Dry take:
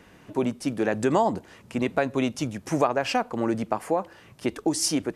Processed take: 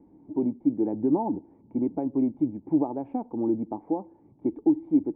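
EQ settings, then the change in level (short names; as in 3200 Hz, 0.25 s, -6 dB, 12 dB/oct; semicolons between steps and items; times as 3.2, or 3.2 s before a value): vocal tract filter u; +6.5 dB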